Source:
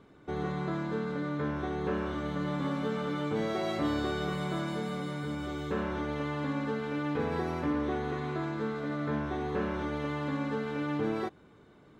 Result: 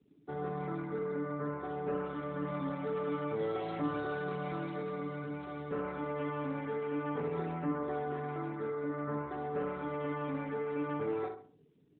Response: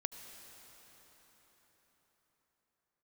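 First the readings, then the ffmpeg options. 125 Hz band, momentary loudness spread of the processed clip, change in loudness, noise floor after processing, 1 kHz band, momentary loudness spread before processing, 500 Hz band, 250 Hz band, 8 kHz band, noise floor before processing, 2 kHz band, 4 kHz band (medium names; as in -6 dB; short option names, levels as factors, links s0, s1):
-5.5 dB, 4 LU, -3.5 dB, -64 dBFS, -2.5 dB, 3 LU, -1.5 dB, -5.5 dB, under -25 dB, -57 dBFS, -5.5 dB, -13.0 dB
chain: -filter_complex "[0:a]afftfilt=real='re*gte(hypot(re,im),0.00631)':imag='im*gte(hypot(re,im),0.00631)':win_size=1024:overlap=0.75,highshelf=f=2300:g=2.5,bandreject=f=60:t=h:w=6,bandreject=f=120:t=h:w=6,bandreject=f=180:t=h:w=6,aecho=1:1:6.9:0.47,asplit=2[s0][s1];[s1]adelay=66,lowpass=f=1900:p=1,volume=0.562,asplit=2[s2][s3];[s3]adelay=66,lowpass=f=1900:p=1,volume=0.39,asplit=2[s4][s5];[s5]adelay=66,lowpass=f=1900:p=1,volume=0.39,asplit=2[s6][s7];[s7]adelay=66,lowpass=f=1900:p=1,volume=0.39,asplit=2[s8][s9];[s9]adelay=66,lowpass=f=1900:p=1,volume=0.39[s10];[s0][s2][s4][s6][s8][s10]amix=inputs=6:normalize=0,volume=0.501" -ar 8000 -c:a libopencore_amrnb -b:a 12200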